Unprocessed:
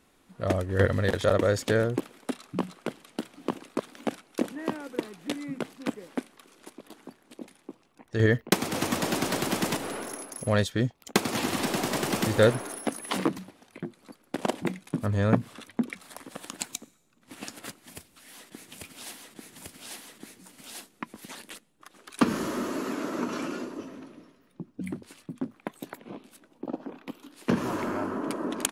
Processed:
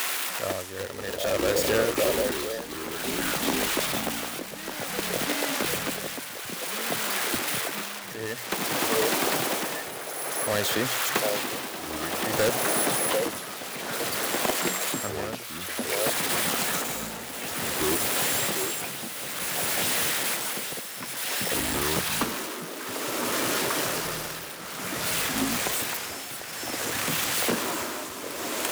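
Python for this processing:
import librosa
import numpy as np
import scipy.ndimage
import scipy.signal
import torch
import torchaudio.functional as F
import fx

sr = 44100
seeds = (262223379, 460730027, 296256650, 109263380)

p1 = x + 0.5 * 10.0 ** (-14.5 / 20.0) * np.diff(np.sign(x), prepend=np.sign(x[:1]))
p2 = fx.bass_treble(p1, sr, bass_db=-12, treble_db=-12)
p3 = fx.hum_notches(p2, sr, base_hz=60, count=2)
p4 = (np.mod(10.0 ** (17.0 / 20.0) * p3 + 1.0, 2.0) - 1.0) / 10.0 ** (17.0 / 20.0)
p5 = p3 + (p4 * 10.0 ** (-4.5 / 20.0))
p6 = fx.echo_pitch(p5, sr, ms=285, semitones=-6, count=3, db_per_echo=-6.0)
p7 = p6 + fx.echo_stepped(p6, sr, ms=746, hz=580.0, octaves=1.4, feedback_pct=70, wet_db=0, dry=0)
p8 = p7 * (1.0 - 0.82 / 2.0 + 0.82 / 2.0 * np.cos(2.0 * np.pi * 0.55 * (np.arange(len(p7)) / sr)))
y = fx.band_squash(p8, sr, depth_pct=40)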